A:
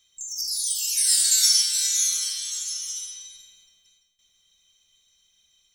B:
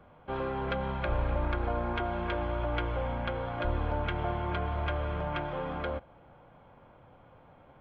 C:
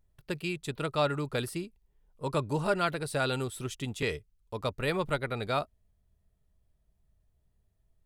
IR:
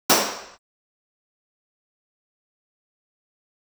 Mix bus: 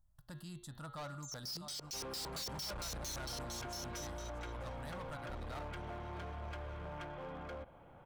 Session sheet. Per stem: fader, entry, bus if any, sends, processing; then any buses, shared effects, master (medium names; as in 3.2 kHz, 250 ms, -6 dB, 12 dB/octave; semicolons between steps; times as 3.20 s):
-5.5 dB, 1.00 s, no send, no echo send, LFO low-pass square 4.4 Hz 450–4900 Hz
-2.5 dB, 1.65 s, no send, no echo send, none
-2.5 dB, 0.00 s, no send, echo send -14.5 dB, static phaser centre 1 kHz, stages 4; de-hum 117.7 Hz, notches 38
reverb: none
echo: delay 647 ms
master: hard clipper -33 dBFS, distortion -4 dB; peak limiter -41 dBFS, peak gain reduction 8 dB